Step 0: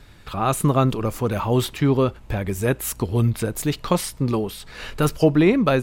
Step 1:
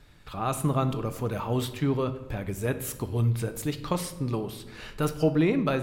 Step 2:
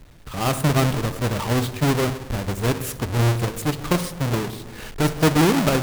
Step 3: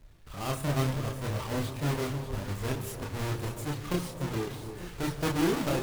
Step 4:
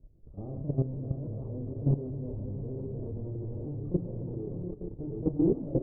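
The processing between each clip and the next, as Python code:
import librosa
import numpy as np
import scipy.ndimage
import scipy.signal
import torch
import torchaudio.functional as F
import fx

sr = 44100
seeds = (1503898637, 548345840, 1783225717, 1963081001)

y1 = fx.room_shoebox(x, sr, seeds[0], volume_m3=450.0, walls='mixed', distance_m=0.44)
y1 = F.gain(torch.from_numpy(y1), -8.0).numpy()
y2 = fx.halfwave_hold(y1, sr)
y2 = F.gain(torch.from_numpy(y2), 2.0).numpy()
y3 = fx.chorus_voices(y2, sr, voices=6, hz=0.47, base_ms=29, depth_ms=1.8, mix_pct=45)
y3 = fx.echo_alternate(y3, sr, ms=297, hz=1100.0, feedback_pct=77, wet_db=-9.5)
y3 = F.gain(torch.from_numpy(y3), -8.0).numpy()
y4 = fx.reverse_delay(y3, sr, ms=479, wet_db=-3.5)
y4 = fx.level_steps(y4, sr, step_db=13)
y4 = scipy.signal.sosfilt(scipy.signal.cheby2(4, 70, 2300.0, 'lowpass', fs=sr, output='sos'), y4)
y4 = F.gain(torch.from_numpy(y4), 4.0).numpy()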